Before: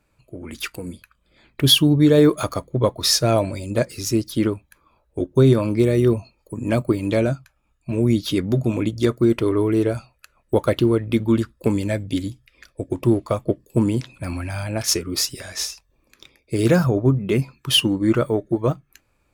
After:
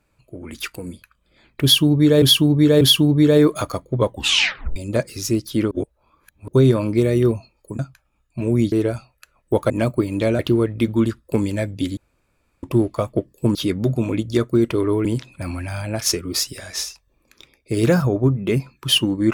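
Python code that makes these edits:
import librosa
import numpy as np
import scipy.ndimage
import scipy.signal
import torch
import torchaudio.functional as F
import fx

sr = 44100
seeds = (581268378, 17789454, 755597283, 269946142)

y = fx.edit(x, sr, fx.repeat(start_s=1.63, length_s=0.59, count=3),
    fx.tape_stop(start_s=2.88, length_s=0.7),
    fx.reverse_span(start_s=4.53, length_s=0.77),
    fx.move(start_s=6.61, length_s=0.69, to_s=10.71),
    fx.move(start_s=8.23, length_s=1.5, to_s=13.87),
    fx.room_tone_fill(start_s=12.29, length_s=0.66), tone=tone)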